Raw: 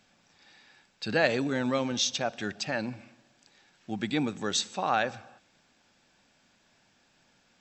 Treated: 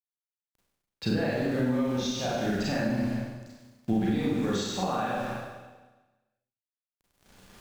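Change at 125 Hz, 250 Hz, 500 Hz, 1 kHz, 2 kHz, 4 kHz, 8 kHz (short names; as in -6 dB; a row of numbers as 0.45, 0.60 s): +7.0, +5.5, +0.5, -1.0, -4.0, -4.5, -6.0 dB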